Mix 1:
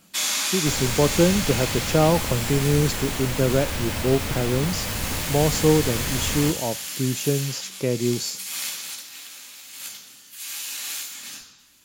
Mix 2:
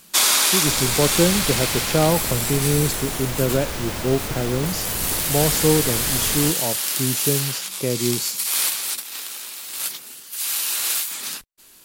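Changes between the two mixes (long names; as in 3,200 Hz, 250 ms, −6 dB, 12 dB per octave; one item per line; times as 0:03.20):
first sound +9.5 dB
reverb: off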